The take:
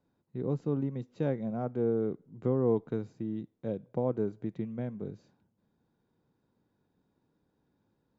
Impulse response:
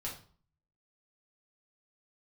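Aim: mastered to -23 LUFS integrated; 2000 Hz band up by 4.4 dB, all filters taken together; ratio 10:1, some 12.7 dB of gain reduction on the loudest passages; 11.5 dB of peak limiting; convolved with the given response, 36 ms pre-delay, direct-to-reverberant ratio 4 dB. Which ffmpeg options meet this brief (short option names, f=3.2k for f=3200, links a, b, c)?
-filter_complex "[0:a]equalizer=f=2k:t=o:g=6,acompressor=threshold=-35dB:ratio=10,alimiter=level_in=10dB:limit=-24dB:level=0:latency=1,volume=-10dB,asplit=2[a][b];[1:a]atrim=start_sample=2205,adelay=36[c];[b][c]afir=irnorm=-1:irlink=0,volume=-4dB[d];[a][d]amix=inputs=2:normalize=0,volume=20dB"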